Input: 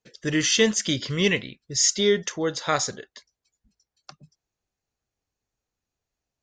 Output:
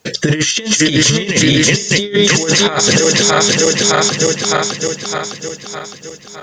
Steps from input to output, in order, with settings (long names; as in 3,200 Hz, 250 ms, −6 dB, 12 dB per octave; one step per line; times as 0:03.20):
feedback delay that plays each chunk backwards 305 ms, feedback 70%, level −8 dB
high-pass filter 55 Hz
mains-hum notches 60/120/180 Hz
compressor whose output falls as the input rises −30 dBFS, ratio −0.5
boost into a limiter +25 dB
level −1 dB